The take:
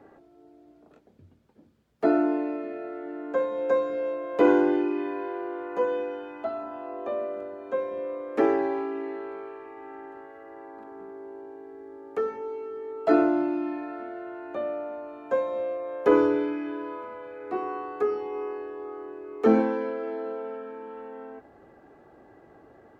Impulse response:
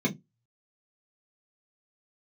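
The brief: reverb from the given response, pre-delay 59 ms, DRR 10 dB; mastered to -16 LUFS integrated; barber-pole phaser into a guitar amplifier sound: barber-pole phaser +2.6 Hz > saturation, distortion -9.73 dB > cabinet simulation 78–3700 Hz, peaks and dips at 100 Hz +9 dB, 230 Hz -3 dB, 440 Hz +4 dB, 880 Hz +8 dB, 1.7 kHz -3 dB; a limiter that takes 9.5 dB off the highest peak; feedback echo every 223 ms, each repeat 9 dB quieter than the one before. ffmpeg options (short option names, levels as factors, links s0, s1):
-filter_complex "[0:a]alimiter=limit=0.119:level=0:latency=1,aecho=1:1:223|446|669|892:0.355|0.124|0.0435|0.0152,asplit=2[s0][s1];[1:a]atrim=start_sample=2205,adelay=59[s2];[s1][s2]afir=irnorm=-1:irlink=0,volume=0.106[s3];[s0][s3]amix=inputs=2:normalize=0,asplit=2[s4][s5];[s5]afreqshift=2.6[s6];[s4][s6]amix=inputs=2:normalize=1,asoftclip=threshold=0.0447,highpass=78,equalizer=f=100:t=q:w=4:g=9,equalizer=f=230:t=q:w=4:g=-3,equalizer=f=440:t=q:w=4:g=4,equalizer=f=880:t=q:w=4:g=8,equalizer=f=1700:t=q:w=4:g=-3,lowpass=f=3700:w=0.5412,lowpass=f=3700:w=1.3066,volume=7.08"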